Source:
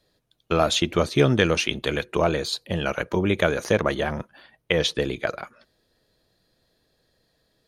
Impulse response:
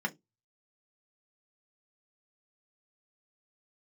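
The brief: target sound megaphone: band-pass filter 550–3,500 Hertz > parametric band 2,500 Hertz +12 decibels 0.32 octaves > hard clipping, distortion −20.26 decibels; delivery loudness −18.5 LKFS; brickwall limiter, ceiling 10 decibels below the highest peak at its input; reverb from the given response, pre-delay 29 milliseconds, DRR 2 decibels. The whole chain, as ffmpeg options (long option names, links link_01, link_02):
-filter_complex "[0:a]alimiter=limit=-13dB:level=0:latency=1,asplit=2[link_01][link_02];[1:a]atrim=start_sample=2205,adelay=29[link_03];[link_02][link_03]afir=irnorm=-1:irlink=0,volume=-8dB[link_04];[link_01][link_04]amix=inputs=2:normalize=0,highpass=550,lowpass=3500,equalizer=frequency=2500:width_type=o:width=0.32:gain=12,asoftclip=type=hard:threshold=-14.5dB,volume=7.5dB"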